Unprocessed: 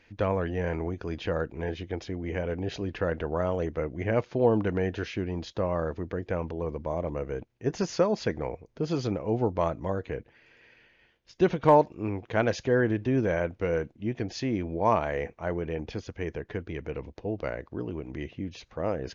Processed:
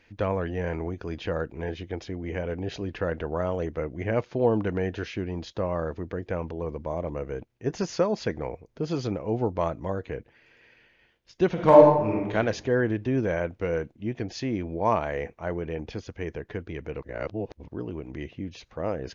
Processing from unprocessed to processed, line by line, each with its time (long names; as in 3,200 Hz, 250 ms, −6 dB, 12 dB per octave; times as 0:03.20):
0:11.53–0:12.34: thrown reverb, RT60 0.9 s, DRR −3 dB
0:17.02–0:17.68: reverse